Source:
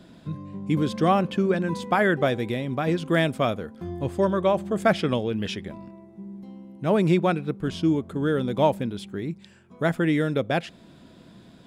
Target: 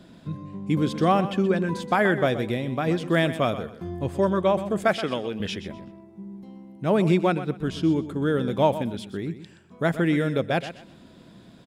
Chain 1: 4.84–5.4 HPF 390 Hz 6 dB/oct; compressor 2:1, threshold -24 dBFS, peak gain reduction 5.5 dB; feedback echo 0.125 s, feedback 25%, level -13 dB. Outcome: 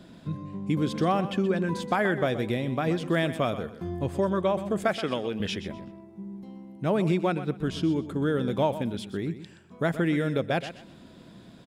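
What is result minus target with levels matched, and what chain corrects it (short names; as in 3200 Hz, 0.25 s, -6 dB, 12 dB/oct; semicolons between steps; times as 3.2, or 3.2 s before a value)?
compressor: peak gain reduction +5.5 dB
4.84–5.4 HPF 390 Hz 6 dB/oct; feedback echo 0.125 s, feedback 25%, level -13 dB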